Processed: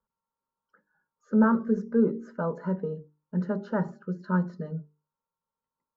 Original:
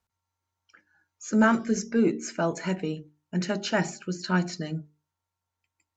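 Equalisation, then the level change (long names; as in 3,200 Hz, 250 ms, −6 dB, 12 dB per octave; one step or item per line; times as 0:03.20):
low-pass filter 1,000 Hz 12 dB per octave
low-shelf EQ 190 Hz −5.5 dB
phaser with its sweep stopped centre 480 Hz, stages 8
+3.5 dB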